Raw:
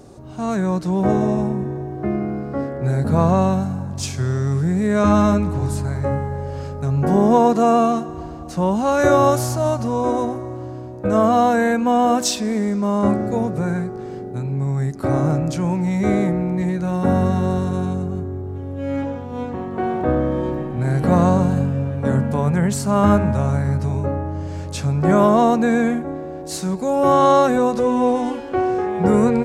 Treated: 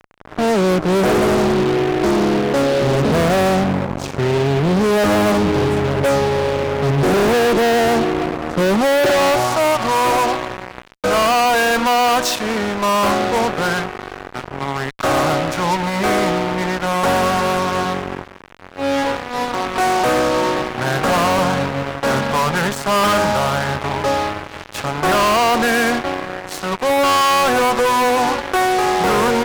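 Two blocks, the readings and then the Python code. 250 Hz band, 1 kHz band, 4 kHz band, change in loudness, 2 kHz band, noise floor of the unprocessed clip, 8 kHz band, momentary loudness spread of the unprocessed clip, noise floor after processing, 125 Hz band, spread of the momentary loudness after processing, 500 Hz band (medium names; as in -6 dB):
-1.5 dB, +5.0 dB, +12.5 dB, +2.5 dB, +11.5 dB, -31 dBFS, +5.5 dB, 12 LU, -37 dBFS, -3.5 dB, 9 LU, +3.0 dB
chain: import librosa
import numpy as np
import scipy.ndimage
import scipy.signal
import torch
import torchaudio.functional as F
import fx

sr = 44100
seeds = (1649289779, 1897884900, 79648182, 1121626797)

y = fx.filter_sweep_bandpass(x, sr, from_hz=460.0, to_hz=1200.0, start_s=8.97, end_s=9.54, q=1.3)
y = fx.fuzz(y, sr, gain_db=37.0, gate_db=-38.0)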